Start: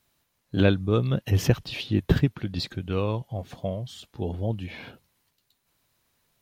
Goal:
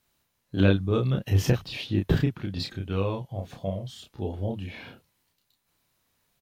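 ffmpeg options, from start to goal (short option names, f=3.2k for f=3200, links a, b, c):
-filter_complex "[0:a]asplit=2[a][b];[b]adelay=31,volume=-3.5dB[c];[a][c]amix=inputs=2:normalize=0,volume=-3dB"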